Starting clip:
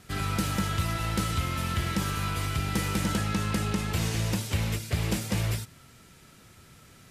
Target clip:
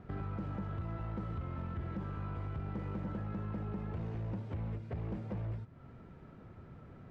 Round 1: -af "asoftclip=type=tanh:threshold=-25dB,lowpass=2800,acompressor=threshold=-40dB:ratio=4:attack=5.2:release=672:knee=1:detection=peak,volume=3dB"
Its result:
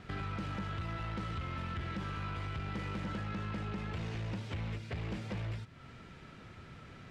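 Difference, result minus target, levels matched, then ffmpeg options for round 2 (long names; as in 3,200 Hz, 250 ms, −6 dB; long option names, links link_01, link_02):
2,000 Hz band +10.0 dB
-af "asoftclip=type=tanh:threshold=-25dB,lowpass=950,acompressor=threshold=-40dB:ratio=4:attack=5.2:release=672:knee=1:detection=peak,volume=3dB"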